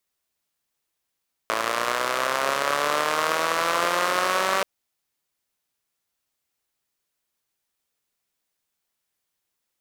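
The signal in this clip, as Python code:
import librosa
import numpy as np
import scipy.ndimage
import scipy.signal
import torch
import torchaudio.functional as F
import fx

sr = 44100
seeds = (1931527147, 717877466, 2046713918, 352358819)

y = fx.engine_four_rev(sr, seeds[0], length_s=3.13, rpm=3300, resonances_hz=(600.0, 1100.0), end_rpm=5800)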